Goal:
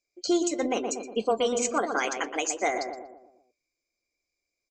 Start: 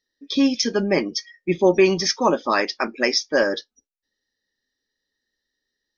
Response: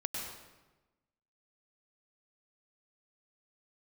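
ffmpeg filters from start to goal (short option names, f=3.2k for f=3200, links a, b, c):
-filter_complex "[0:a]asetrate=56007,aresample=44100,asplit=2[a][b];[b]adelay=120,lowpass=f=1.2k:p=1,volume=-5.5dB,asplit=2[c][d];[d]adelay=120,lowpass=f=1.2k:p=1,volume=0.5,asplit=2[e][f];[f]adelay=120,lowpass=f=1.2k:p=1,volume=0.5,asplit=2[g][h];[h]adelay=120,lowpass=f=1.2k:p=1,volume=0.5,asplit=2[i][j];[j]adelay=120,lowpass=f=1.2k:p=1,volume=0.5,asplit=2[k][l];[l]adelay=120,lowpass=f=1.2k:p=1,volume=0.5[m];[c][e][g][i][k][m]amix=inputs=6:normalize=0[n];[a][n]amix=inputs=2:normalize=0,alimiter=limit=-10.5dB:level=0:latency=1:release=290,volume=-5dB"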